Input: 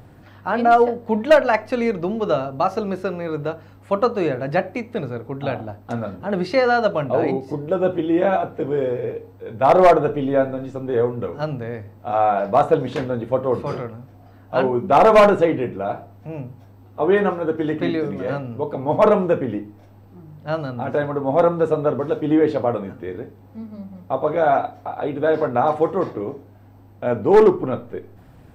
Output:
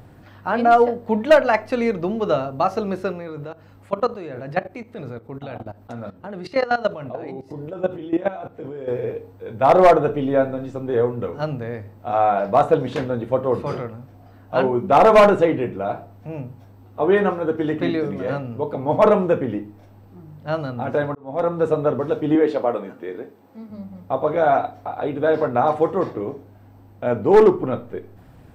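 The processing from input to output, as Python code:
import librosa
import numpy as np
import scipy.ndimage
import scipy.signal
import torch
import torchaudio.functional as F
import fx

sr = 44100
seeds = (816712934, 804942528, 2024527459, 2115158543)

y = fx.level_steps(x, sr, step_db=16, at=(3.12, 8.88))
y = fx.highpass(y, sr, hz=250.0, slope=12, at=(22.35, 23.7))
y = fx.edit(y, sr, fx.fade_in_span(start_s=21.15, length_s=0.53), tone=tone)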